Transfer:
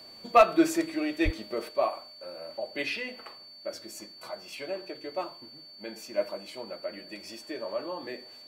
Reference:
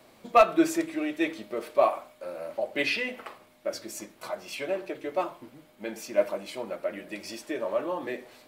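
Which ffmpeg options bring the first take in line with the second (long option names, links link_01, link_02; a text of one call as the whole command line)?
ffmpeg -i in.wav -filter_complex "[0:a]bandreject=frequency=4500:width=30,asplit=3[link_01][link_02][link_03];[link_01]afade=type=out:start_time=1.24:duration=0.02[link_04];[link_02]highpass=frequency=140:width=0.5412,highpass=frequency=140:width=1.3066,afade=type=in:start_time=1.24:duration=0.02,afade=type=out:start_time=1.36:duration=0.02[link_05];[link_03]afade=type=in:start_time=1.36:duration=0.02[link_06];[link_04][link_05][link_06]amix=inputs=3:normalize=0,asetnsamples=nb_out_samples=441:pad=0,asendcmd='1.69 volume volume 5dB',volume=0dB" out.wav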